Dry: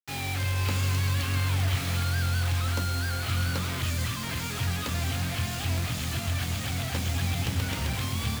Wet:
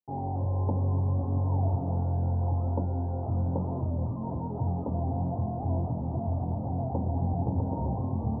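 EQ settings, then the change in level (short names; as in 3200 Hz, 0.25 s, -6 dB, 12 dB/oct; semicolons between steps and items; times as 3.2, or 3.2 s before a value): Chebyshev low-pass 930 Hz, order 6; low shelf 110 Hz -9 dB; +5.5 dB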